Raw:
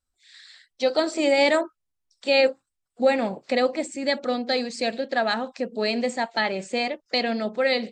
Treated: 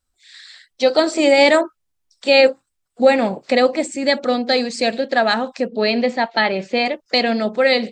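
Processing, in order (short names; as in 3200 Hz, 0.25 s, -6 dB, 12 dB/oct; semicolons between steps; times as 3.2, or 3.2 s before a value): 5.68–6.86 LPF 4900 Hz 24 dB/oct; gain +7 dB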